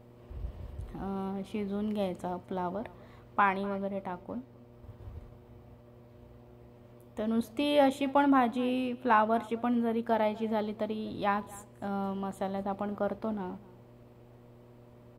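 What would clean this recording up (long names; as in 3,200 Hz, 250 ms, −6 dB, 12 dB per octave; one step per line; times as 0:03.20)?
hum removal 120 Hz, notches 5
echo removal 248 ms −21.5 dB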